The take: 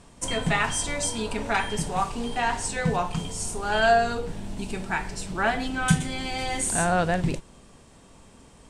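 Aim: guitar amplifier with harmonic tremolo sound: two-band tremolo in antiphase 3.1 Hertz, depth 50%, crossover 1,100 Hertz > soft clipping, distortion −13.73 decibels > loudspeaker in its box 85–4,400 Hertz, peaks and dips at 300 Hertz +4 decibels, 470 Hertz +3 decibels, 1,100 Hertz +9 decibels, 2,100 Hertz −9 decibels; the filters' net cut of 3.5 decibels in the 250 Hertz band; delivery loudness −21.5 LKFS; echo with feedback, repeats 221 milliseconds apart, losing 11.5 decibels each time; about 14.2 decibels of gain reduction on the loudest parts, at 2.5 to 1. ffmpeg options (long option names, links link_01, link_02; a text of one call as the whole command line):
ffmpeg -i in.wav -filter_complex "[0:a]equalizer=frequency=250:width_type=o:gain=-6.5,acompressor=threshold=-38dB:ratio=2.5,aecho=1:1:221|442|663:0.266|0.0718|0.0194,acrossover=split=1100[link_01][link_02];[link_01]aeval=exprs='val(0)*(1-0.5/2+0.5/2*cos(2*PI*3.1*n/s))':channel_layout=same[link_03];[link_02]aeval=exprs='val(0)*(1-0.5/2-0.5/2*cos(2*PI*3.1*n/s))':channel_layout=same[link_04];[link_03][link_04]amix=inputs=2:normalize=0,asoftclip=threshold=-34.5dB,highpass=85,equalizer=frequency=300:width_type=q:width=4:gain=4,equalizer=frequency=470:width_type=q:width=4:gain=3,equalizer=frequency=1100:width_type=q:width=4:gain=9,equalizer=frequency=2100:width_type=q:width=4:gain=-9,lowpass=frequency=4400:width=0.5412,lowpass=frequency=4400:width=1.3066,volume=20.5dB" out.wav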